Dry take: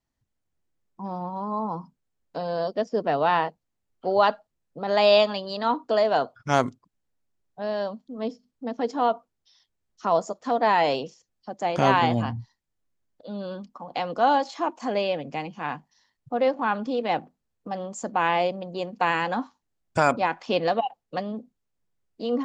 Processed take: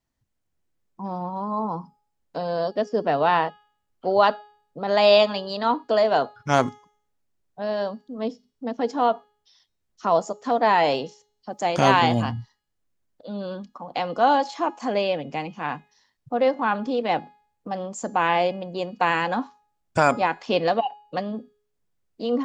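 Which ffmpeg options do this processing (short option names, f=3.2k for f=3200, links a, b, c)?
-filter_complex "[0:a]asettb=1/sr,asplit=3[a][b][c];[a]atrim=end=11.524[d];[b]atrim=start=11.52:end=12.32,asetpts=PTS-STARTPTS,afade=t=in:d=0.004:c=qsin,afade=t=out:st=0.796:d=0.004:c=qsin,highshelf=f=4.4k:g=9.5[e];[c]atrim=start=12.316[f];[d][e]acrossfade=d=0.004:c1=hsin:c2=qsin[g];[g][f]acrossfade=d=0.004:c1=qsin:c2=hsin,bandreject=f=417.3:t=h:w=4,bandreject=f=834.6:t=h:w=4,bandreject=f=1.2519k:t=h:w=4,bandreject=f=1.6692k:t=h:w=4,bandreject=f=2.0865k:t=h:w=4,bandreject=f=2.5038k:t=h:w=4,bandreject=f=2.9211k:t=h:w=4,bandreject=f=3.3384k:t=h:w=4,bandreject=f=3.7557k:t=h:w=4,bandreject=f=4.173k:t=h:w=4,bandreject=f=4.5903k:t=h:w=4,bandreject=f=5.0076k:t=h:w=4,bandreject=f=5.4249k:t=h:w=4,bandreject=f=5.8422k:t=h:w=4,bandreject=f=6.2595k:t=h:w=4,bandreject=f=6.6768k:t=h:w=4,bandreject=f=7.0941k:t=h:w=4,bandreject=f=7.5114k:t=h:w=4,bandreject=f=7.9287k:t=h:w=4,bandreject=f=8.346k:t=h:w=4,bandreject=f=8.7633k:t=h:w=4,bandreject=f=9.1806k:t=h:w=4,bandreject=f=9.5979k:t=h:w=4,bandreject=f=10.0152k:t=h:w=4,bandreject=f=10.4325k:t=h:w=4,bandreject=f=10.8498k:t=h:w=4,bandreject=f=11.2671k:t=h:w=4,bandreject=f=11.6844k:t=h:w=4,bandreject=f=12.1017k:t=h:w=4,bandreject=f=12.519k:t=h:w=4,bandreject=f=12.9363k:t=h:w=4,bandreject=f=13.3536k:t=h:w=4,bandreject=f=13.7709k:t=h:w=4,bandreject=f=14.1882k:t=h:w=4,volume=2dB"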